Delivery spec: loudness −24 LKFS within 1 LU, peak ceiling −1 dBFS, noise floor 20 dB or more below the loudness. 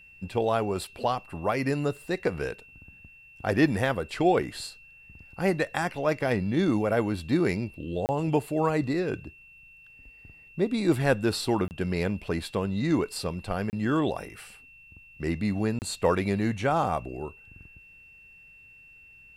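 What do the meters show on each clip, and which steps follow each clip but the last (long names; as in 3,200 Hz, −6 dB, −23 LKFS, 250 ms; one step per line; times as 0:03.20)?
number of dropouts 4; longest dropout 29 ms; interfering tone 2,700 Hz; level of the tone −50 dBFS; integrated loudness −28.0 LKFS; sample peak −10.0 dBFS; target loudness −24.0 LKFS
→ repair the gap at 0:08.06/0:11.68/0:13.70/0:15.79, 29 ms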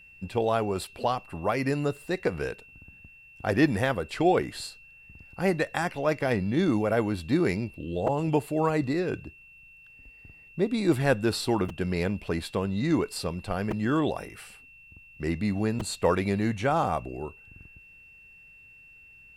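number of dropouts 0; interfering tone 2,700 Hz; level of the tone −50 dBFS
→ notch filter 2,700 Hz, Q 30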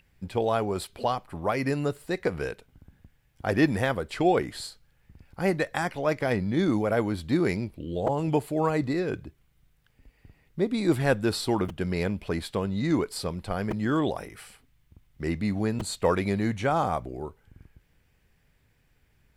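interfering tone none found; integrated loudness −28.0 LKFS; sample peak −10.0 dBFS; target loudness −24.0 LKFS
→ level +4 dB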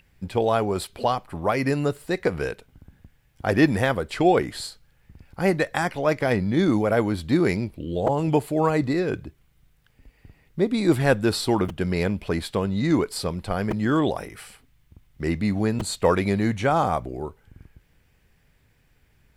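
integrated loudness −24.0 LKFS; sample peak −6.0 dBFS; background noise floor −63 dBFS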